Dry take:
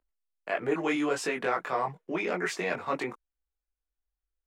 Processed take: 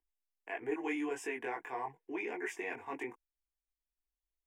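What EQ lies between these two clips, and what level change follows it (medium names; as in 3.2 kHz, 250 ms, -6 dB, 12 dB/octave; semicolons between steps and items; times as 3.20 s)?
static phaser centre 860 Hz, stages 8; -6.5 dB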